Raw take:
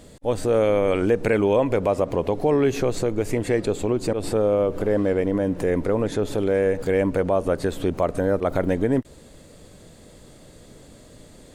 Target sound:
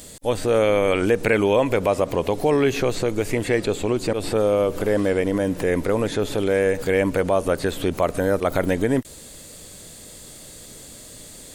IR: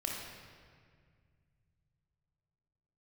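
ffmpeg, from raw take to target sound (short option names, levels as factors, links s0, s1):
-filter_complex "[0:a]acrossover=split=3600[s0][s1];[s1]acompressor=threshold=0.00178:ratio=4:attack=1:release=60[s2];[s0][s2]amix=inputs=2:normalize=0,crystalizer=i=6:c=0"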